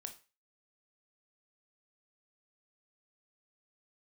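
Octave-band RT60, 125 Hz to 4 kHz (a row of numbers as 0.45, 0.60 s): 0.30, 0.25, 0.30, 0.35, 0.35, 0.30 s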